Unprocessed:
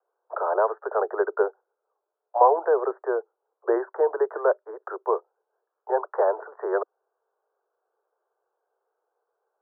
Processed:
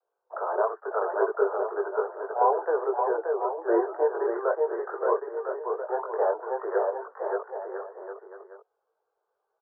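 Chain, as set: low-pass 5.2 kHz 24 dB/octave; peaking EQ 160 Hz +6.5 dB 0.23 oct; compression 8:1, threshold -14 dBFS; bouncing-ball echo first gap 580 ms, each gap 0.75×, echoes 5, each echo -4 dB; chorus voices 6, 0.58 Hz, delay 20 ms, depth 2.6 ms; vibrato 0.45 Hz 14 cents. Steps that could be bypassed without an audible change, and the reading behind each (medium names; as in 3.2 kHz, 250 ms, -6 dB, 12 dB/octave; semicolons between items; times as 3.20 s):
low-pass 5.2 kHz: input has nothing above 1.7 kHz; peaking EQ 160 Hz: input has nothing below 320 Hz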